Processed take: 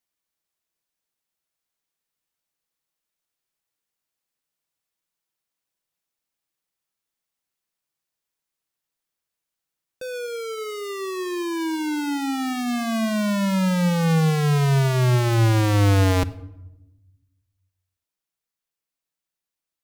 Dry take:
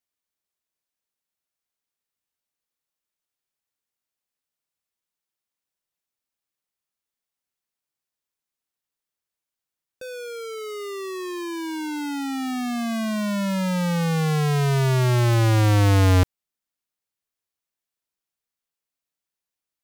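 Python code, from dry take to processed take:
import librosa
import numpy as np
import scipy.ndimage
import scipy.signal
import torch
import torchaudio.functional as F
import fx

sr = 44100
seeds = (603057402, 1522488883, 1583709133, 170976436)

p1 = fx.rider(x, sr, range_db=3, speed_s=0.5)
p2 = x + (p1 * 10.0 ** (0.0 / 20.0))
p3 = fx.room_shoebox(p2, sr, seeds[0], volume_m3=3700.0, walls='furnished', distance_m=0.67)
y = p3 * 10.0 ** (-5.0 / 20.0)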